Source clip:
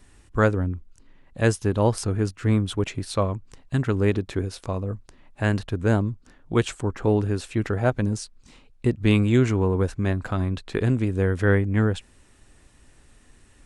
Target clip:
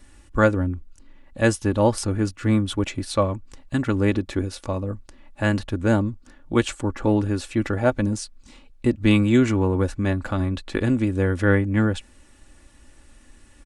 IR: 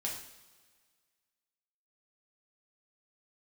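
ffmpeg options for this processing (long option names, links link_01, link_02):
-af "aecho=1:1:3.5:0.5,volume=1.5dB"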